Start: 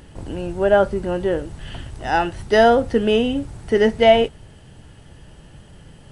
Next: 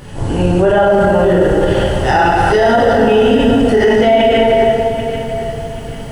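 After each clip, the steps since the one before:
dense smooth reverb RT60 2.1 s, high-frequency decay 0.65×, DRR −8.5 dB
boost into a limiter +10 dB
feedback echo at a low word length 789 ms, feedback 35%, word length 6 bits, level −12 dB
level −2.5 dB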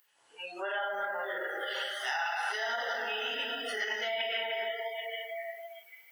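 high-pass filter 1,500 Hz 12 dB per octave
noise reduction from a noise print of the clip's start 25 dB
downward compressor 2.5 to 1, threshold −30 dBFS, peak gain reduction 9.5 dB
level −4 dB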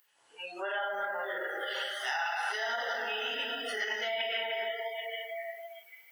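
no processing that can be heard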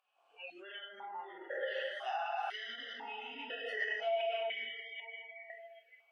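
formant filter that steps through the vowels 2 Hz
level +6 dB

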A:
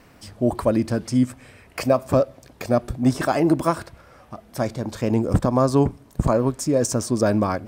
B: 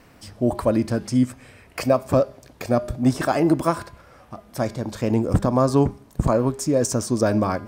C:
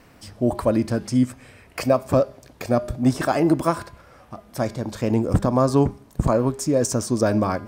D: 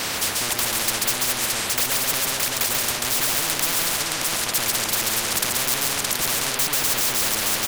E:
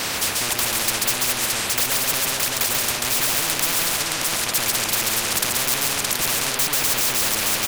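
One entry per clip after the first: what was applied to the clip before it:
hum removal 202.8 Hz, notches 34
no processing that can be heard
mid-hump overdrive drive 34 dB, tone 6,100 Hz, clips at −5.5 dBFS; multi-tap delay 138/191/620 ms −4.5/−11/−7.5 dB; every bin compressed towards the loudest bin 10 to 1; level −3 dB
loose part that buzzes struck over −36 dBFS, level −21 dBFS; level +1 dB

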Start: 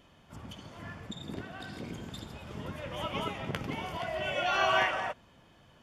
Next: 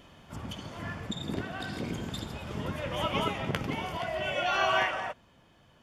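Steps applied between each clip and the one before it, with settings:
speech leveller within 4 dB 2 s
level +2 dB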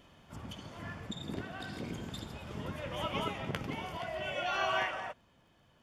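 surface crackle 28 per second −56 dBFS
level −5.5 dB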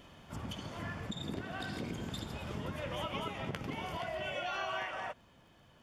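downward compressor 4 to 1, threshold −40 dBFS, peak gain reduction 10.5 dB
level +4 dB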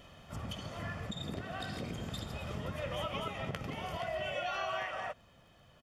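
comb filter 1.6 ms, depth 35%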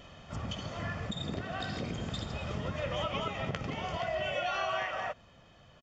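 downsampling to 16,000 Hz
level +3.5 dB

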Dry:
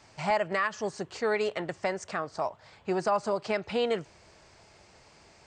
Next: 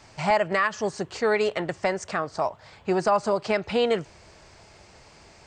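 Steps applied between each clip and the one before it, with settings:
low-shelf EQ 71 Hz +6 dB
level +5 dB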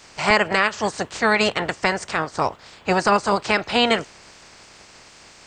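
ceiling on every frequency bin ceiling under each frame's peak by 16 dB
level +4.5 dB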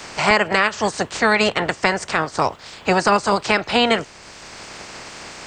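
multiband upward and downward compressor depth 40%
level +2 dB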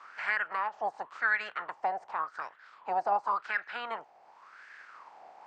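LFO wah 0.9 Hz 740–1,700 Hz, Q 7.3
level −3 dB

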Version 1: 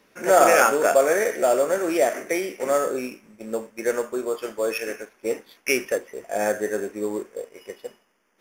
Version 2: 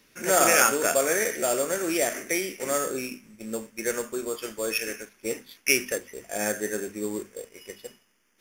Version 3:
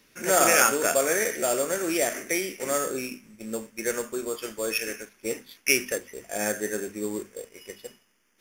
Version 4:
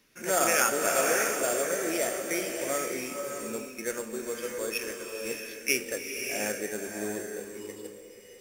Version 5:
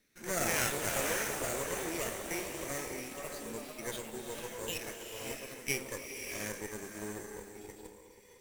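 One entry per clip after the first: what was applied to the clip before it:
parametric band 690 Hz −13.5 dB 2.7 octaves; mains-hum notches 50/100/150/200/250 Hz; level +5.5 dB
no processing that can be heard
slow-attack reverb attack 630 ms, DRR 2.5 dB; level −5 dB
lower of the sound and its delayed copy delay 0.49 ms; delay with pitch and tempo change per echo 171 ms, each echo +4 semitones, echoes 3, each echo −6 dB; level −7 dB

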